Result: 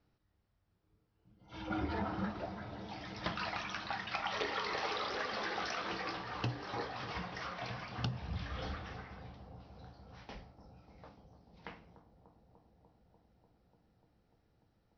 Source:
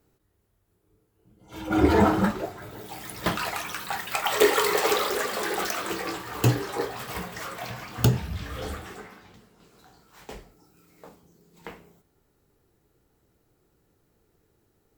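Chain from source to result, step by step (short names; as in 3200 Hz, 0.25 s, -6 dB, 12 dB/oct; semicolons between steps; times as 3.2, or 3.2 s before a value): steep low-pass 5700 Hz 96 dB/oct; bell 400 Hz -9 dB 0.58 oct; compressor 6:1, threshold -28 dBFS, peak gain reduction 12 dB; analogue delay 0.295 s, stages 2048, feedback 83%, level -12.5 dB; gain -6 dB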